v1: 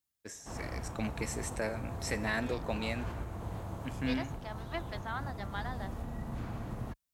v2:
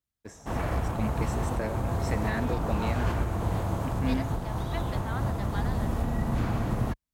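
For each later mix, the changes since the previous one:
first voice: add tilt EQ -2 dB/octave; background +11.5 dB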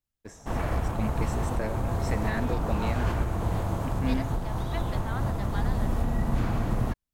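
master: remove high-pass 42 Hz

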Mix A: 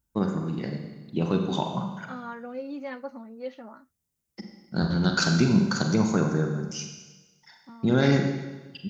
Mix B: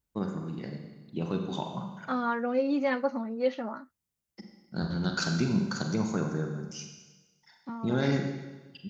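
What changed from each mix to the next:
first voice -6.5 dB; second voice +8.5 dB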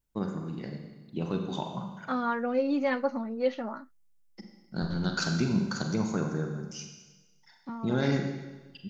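master: remove high-pass 43 Hz

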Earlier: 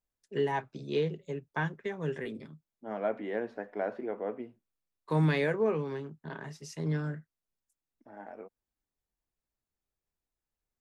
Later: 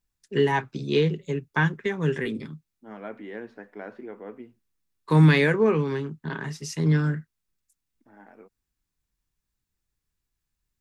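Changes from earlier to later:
first voice +11.0 dB; master: add peaking EQ 630 Hz -9.5 dB 0.87 oct

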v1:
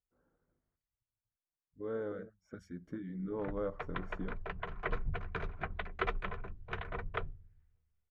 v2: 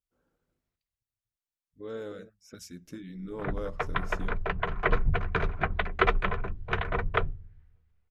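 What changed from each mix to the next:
speech: remove Savitzky-Golay filter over 41 samples; background +11.0 dB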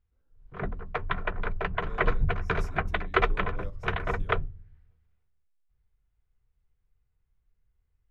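speech -8.0 dB; background: entry -2.85 s

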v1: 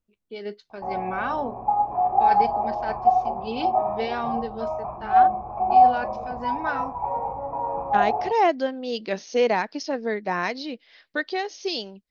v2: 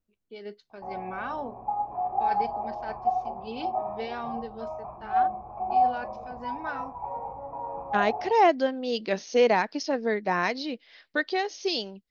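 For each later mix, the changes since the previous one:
first voice -6.5 dB; background -7.5 dB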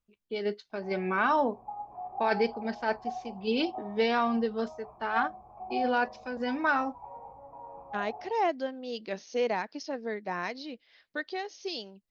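first voice +9.0 dB; second voice -8.0 dB; background -10.5 dB

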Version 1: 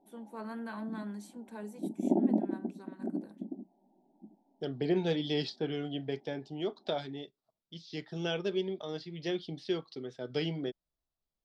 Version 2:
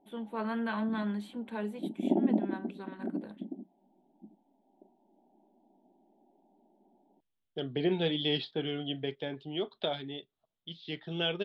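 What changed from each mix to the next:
first voice +7.0 dB; second voice: entry +2.95 s; master: add resonant high shelf 4.4 kHz -10 dB, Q 3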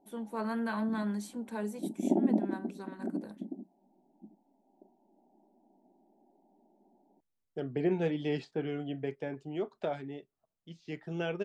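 second voice: add high-order bell 4.3 kHz -14 dB 1 oct; master: add resonant high shelf 4.4 kHz +10 dB, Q 3

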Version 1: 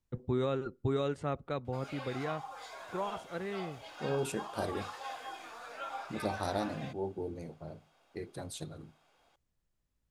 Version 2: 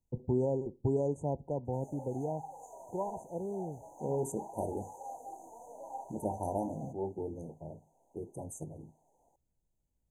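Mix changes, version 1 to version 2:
first voice: send +10.0 dB; master: add brick-wall FIR band-stop 1–6 kHz

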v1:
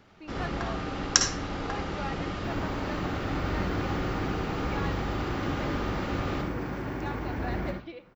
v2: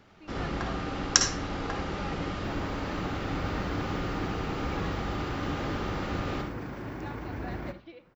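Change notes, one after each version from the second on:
speech -5.5 dB; second sound: send -11.5 dB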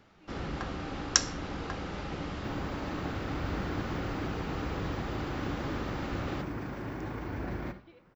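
speech -9.0 dB; first sound: send off

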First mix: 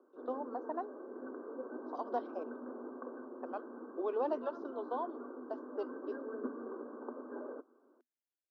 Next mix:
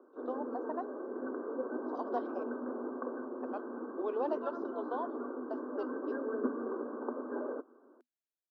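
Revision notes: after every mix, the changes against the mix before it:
background +6.5 dB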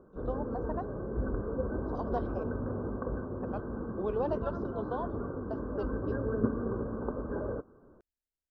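master: remove rippled Chebyshev high-pass 240 Hz, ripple 3 dB

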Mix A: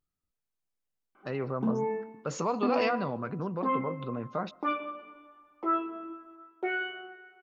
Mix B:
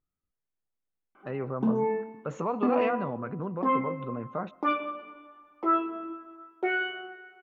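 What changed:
speech: add boxcar filter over 9 samples; background +3.5 dB

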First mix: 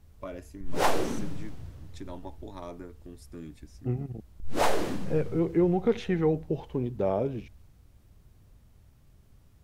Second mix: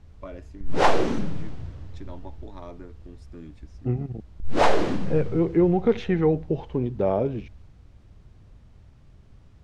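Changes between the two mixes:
second voice +4.5 dB; background +6.5 dB; master: add distance through air 100 m

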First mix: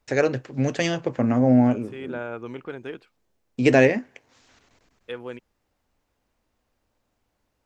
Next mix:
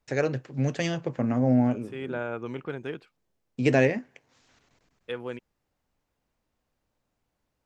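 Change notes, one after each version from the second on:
first voice -5.5 dB; master: add peaking EQ 150 Hz +8.5 dB 0.33 oct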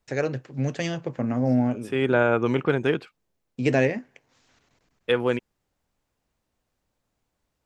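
second voice +12.0 dB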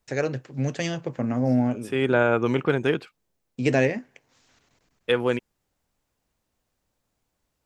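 master: add treble shelf 5.7 kHz +5 dB

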